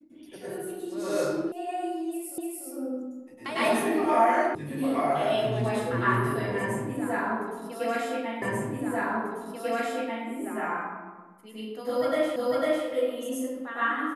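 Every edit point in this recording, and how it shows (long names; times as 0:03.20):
0:01.52: cut off before it has died away
0:02.38: the same again, the last 0.29 s
0:04.55: cut off before it has died away
0:08.42: the same again, the last 1.84 s
0:12.36: the same again, the last 0.5 s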